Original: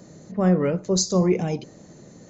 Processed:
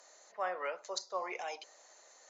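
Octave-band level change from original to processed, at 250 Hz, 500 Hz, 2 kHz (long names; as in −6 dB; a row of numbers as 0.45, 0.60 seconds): −35.0, −17.0, −3.5 decibels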